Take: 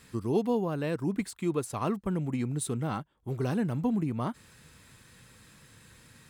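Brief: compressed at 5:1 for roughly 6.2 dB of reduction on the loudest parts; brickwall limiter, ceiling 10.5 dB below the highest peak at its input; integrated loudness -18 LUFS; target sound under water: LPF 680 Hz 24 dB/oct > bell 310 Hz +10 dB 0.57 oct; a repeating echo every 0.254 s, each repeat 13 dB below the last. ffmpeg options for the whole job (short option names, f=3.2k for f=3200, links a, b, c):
-af "acompressor=threshold=-30dB:ratio=5,alimiter=level_in=8.5dB:limit=-24dB:level=0:latency=1,volume=-8.5dB,lowpass=f=680:w=0.5412,lowpass=f=680:w=1.3066,equalizer=f=310:t=o:w=0.57:g=10,aecho=1:1:254|508|762:0.224|0.0493|0.0108,volume=19dB"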